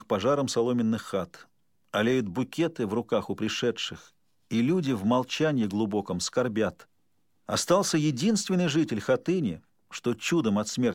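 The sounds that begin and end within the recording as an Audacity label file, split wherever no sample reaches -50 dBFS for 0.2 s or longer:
1.930000	4.090000	sound
4.510000	6.840000	sound
7.490000	9.600000	sound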